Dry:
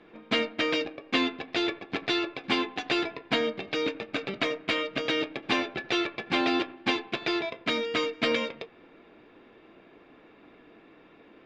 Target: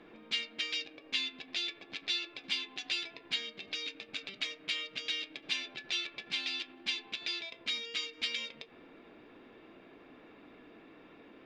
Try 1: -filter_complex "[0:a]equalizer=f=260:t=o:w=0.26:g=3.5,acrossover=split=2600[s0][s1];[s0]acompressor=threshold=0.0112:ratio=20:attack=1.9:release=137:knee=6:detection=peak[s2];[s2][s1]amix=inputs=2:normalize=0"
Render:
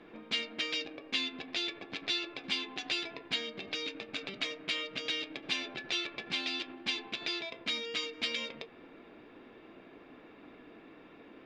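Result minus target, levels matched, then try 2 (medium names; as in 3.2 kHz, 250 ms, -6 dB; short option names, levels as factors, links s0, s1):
compression: peak gain reduction -9 dB
-filter_complex "[0:a]equalizer=f=260:t=o:w=0.26:g=3.5,acrossover=split=2600[s0][s1];[s0]acompressor=threshold=0.00376:ratio=20:attack=1.9:release=137:knee=6:detection=peak[s2];[s2][s1]amix=inputs=2:normalize=0"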